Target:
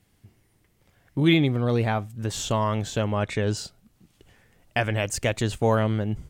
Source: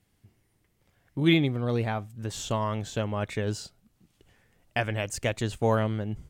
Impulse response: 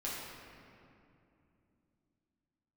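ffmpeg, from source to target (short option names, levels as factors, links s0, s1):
-filter_complex "[0:a]asplit=2[s0][s1];[s1]alimiter=limit=0.1:level=0:latency=1,volume=0.841[s2];[s0][s2]amix=inputs=2:normalize=0,asettb=1/sr,asplit=3[s3][s4][s5];[s3]atrim=end=3.174[s6];[s4]atrim=start=3.17:end=3.57,asetpts=PTS-STARTPTS,afade=t=in:d=0.004:c=qsin,afade=t=out:st=0.396:d=0.004:c=qsin,lowpass=9400[s7];[s5]atrim=start=3.566[s8];[s6][s7]acrossfade=d=0.004:c1=hsin:c2=qsin[s9];[s9][s8]acrossfade=d=0.004:c1=qsin:c2=hsin"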